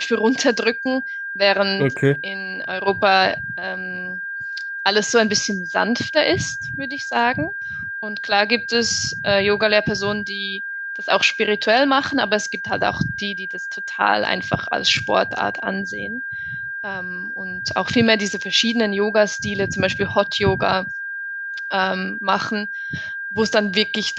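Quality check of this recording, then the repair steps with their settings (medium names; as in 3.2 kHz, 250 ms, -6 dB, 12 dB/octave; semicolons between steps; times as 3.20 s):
whine 1.6 kHz -26 dBFS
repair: band-stop 1.6 kHz, Q 30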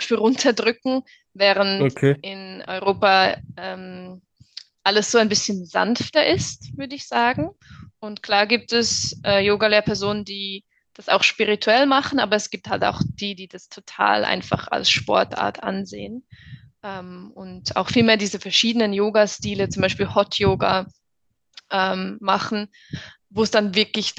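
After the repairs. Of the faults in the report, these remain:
nothing left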